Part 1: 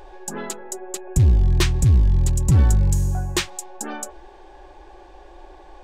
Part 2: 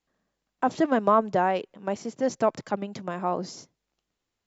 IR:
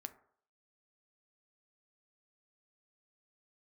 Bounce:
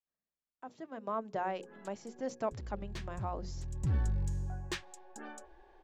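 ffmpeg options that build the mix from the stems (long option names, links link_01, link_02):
-filter_complex "[0:a]equalizer=frequency=1700:width=6.6:gain=6.5,adynamicsmooth=sensitivity=1:basefreq=5600,adelay=1350,volume=-15.5dB[link_01];[1:a]bandreject=frequency=60:width_type=h:width=6,bandreject=frequency=120:width_type=h:width=6,bandreject=frequency=180:width_type=h:width=6,bandreject=frequency=240:width_type=h:width=6,bandreject=frequency=300:width_type=h:width=6,bandreject=frequency=360:width_type=h:width=6,bandreject=frequency=420:width_type=h:width=6,bandreject=frequency=480:width_type=h:width=6,bandreject=frequency=540:width_type=h:width=6,volume=-11.5dB,afade=type=in:start_time=0.91:duration=0.5:silence=0.266073,asplit=2[link_02][link_03];[link_03]apad=whole_len=316951[link_04];[link_01][link_04]sidechaincompress=threshold=-48dB:ratio=8:attack=37:release=570[link_05];[link_05][link_02]amix=inputs=2:normalize=0"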